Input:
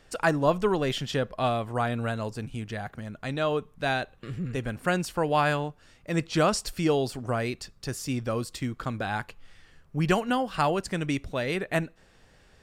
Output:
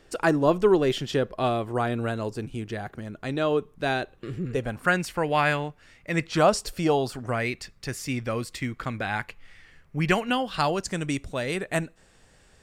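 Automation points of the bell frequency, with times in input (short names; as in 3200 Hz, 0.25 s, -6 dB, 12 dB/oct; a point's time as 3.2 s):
bell +9 dB 0.6 oct
4.49 s 360 Hz
4.98 s 2100 Hz
6.27 s 2100 Hz
6.59 s 340 Hz
7.31 s 2100 Hz
10.19 s 2100 Hz
11 s 8000 Hz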